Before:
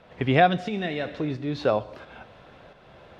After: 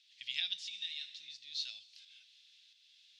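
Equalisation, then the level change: inverse Chebyshev high-pass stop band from 1.2 kHz, stop band 60 dB; distance through air 76 m; +8.5 dB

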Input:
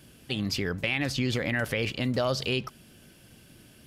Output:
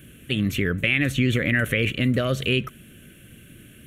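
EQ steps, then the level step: static phaser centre 2.1 kHz, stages 4; +8.0 dB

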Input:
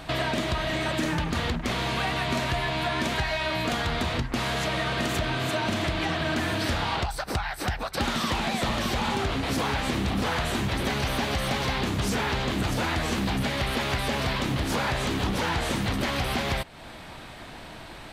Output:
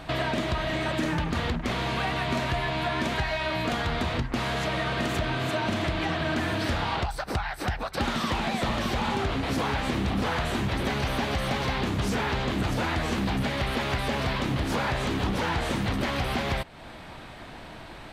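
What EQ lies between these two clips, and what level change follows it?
treble shelf 4.1 kHz -6.5 dB; 0.0 dB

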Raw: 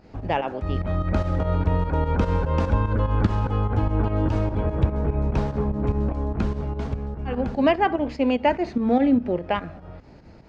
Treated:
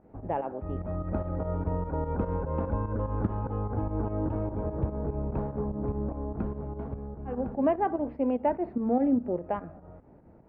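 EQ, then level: low-pass 1 kHz 12 dB/octave; distance through air 180 m; bass shelf 140 Hz -7.5 dB; -4.0 dB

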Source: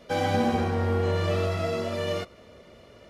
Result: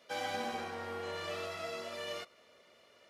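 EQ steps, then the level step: high-pass 1.2 kHz 6 dB/octave; -5.5 dB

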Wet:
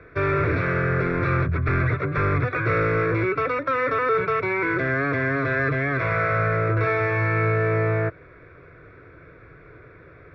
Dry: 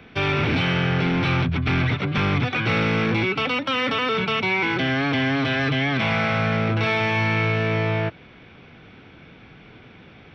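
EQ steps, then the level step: low-pass 2.3 kHz 12 dB/octave; static phaser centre 820 Hz, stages 6; +4.0 dB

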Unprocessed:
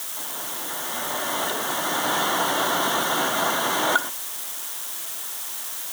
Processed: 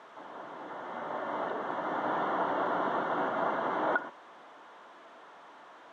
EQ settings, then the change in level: high-pass 240 Hz 6 dB/octave; low-pass 1.1 kHz 12 dB/octave; distance through air 52 m; -3.5 dB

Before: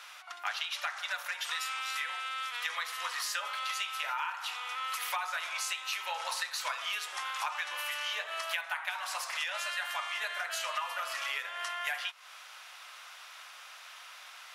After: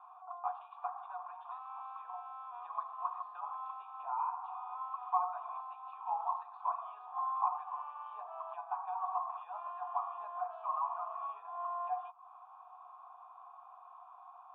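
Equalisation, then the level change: cascade formant filter a; high-pass 410 Hz; static phaser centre 560 Hz, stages 6; +13.0 dB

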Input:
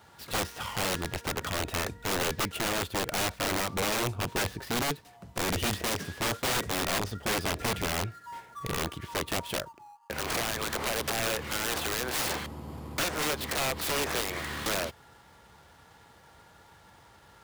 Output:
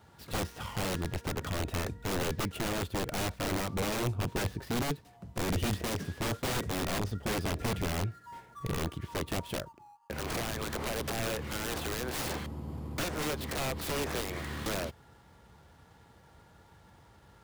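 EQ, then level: bass shelf 440 Hz +9.5 dB; -6.5 dB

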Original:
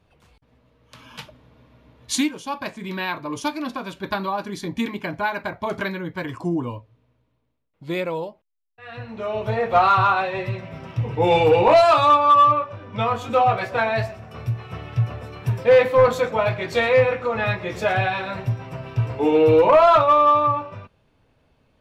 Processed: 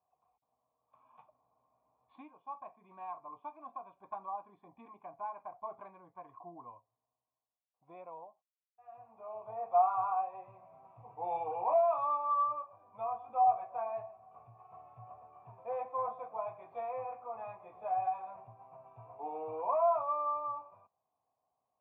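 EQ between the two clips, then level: cascade formant filter a; high-pass 86 Hz; treble shelf 2.6 kHz +9.5 dB; -6.5 dB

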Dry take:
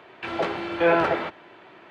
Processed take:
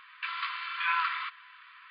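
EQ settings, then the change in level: dynamic bell 1.6 kHz, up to -5 dB, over -37 dBFS, Q 2.6; brick-wall FIR band-pass 980–5000 Hz; 0.0 dB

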